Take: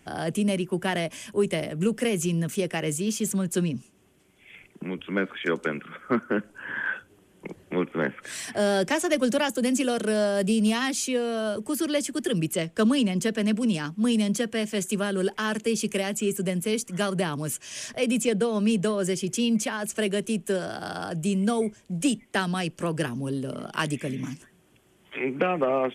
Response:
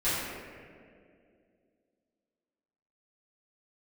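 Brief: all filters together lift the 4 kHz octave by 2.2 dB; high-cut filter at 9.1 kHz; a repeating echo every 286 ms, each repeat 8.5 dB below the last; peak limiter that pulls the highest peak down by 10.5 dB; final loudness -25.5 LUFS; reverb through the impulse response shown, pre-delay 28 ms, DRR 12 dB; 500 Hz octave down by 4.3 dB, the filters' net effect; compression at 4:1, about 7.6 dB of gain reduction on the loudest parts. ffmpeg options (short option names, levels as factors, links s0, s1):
-filter_complex "[0:a]lowpass=9100,equalizer=f=500:t=o:g=-5.5,equalizer=f=4000:t=o:g=3.5,acompressor=threshold=0.0355:ratio=4,alimiter=level_in=1.41:limit=0.0631:level=0:latency=1,volume=0.708,aecho=1:1:286|572|858|1144:0.376|0.143|0.0543|0.0206,asplit=2[s0][s1];[1:a]atrim=start_sample=2205,adelay=28[s2];[s1][s2]afir=irnorm=-1:irlink=0,volume=0.0668[s3];[s0][s3]amix=inputs=2:normalize=0,volume=2.99"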